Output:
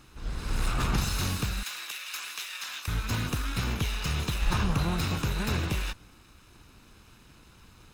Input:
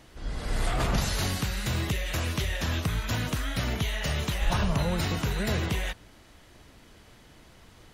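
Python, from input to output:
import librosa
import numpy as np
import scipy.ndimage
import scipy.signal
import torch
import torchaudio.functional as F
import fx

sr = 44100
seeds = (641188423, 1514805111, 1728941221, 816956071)

y = fx.lower_of_two(x, sr, delay_ms=0.78)
y = fx.highpass(y, sr, hz=1400.0, slope=12, at=(1.63, 2.88))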